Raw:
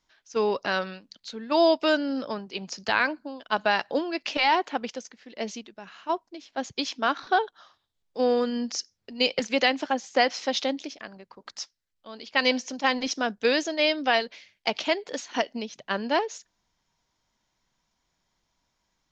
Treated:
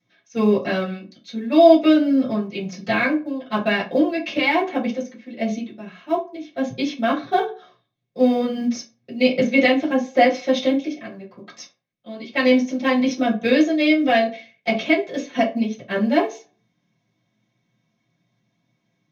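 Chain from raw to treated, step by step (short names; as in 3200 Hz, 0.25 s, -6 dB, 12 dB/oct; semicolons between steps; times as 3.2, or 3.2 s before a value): bell 120 Hz +9.5 dB 0.32 oct; modulation noise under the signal 28 dB; reverb RT60 0.35 s, pre-delay 3 ms, DRR -11 dB; gain -11.5 dB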